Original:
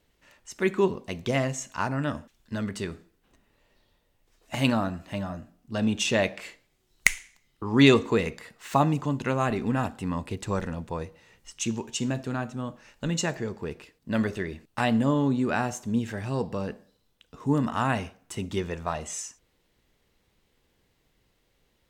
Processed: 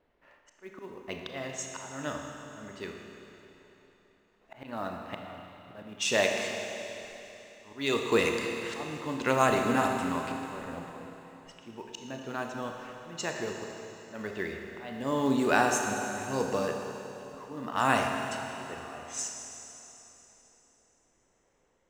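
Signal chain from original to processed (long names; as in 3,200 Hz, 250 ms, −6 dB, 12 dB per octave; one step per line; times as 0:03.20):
volume swells 520 ms
bass and treble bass −11 dB, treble +5 dB
low-pass that shuts in the quiet parts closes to 1,400 Hz, open at −28.5 dBFS
amplitude tremolo 0.84 Hz, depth 35%
in parallel at −7.5 dB: floating-point word with a short mantissa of 2 bits
on the sum: four-comb reverb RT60 3.4 s, combs from 26 ms, DRR 2.5 dB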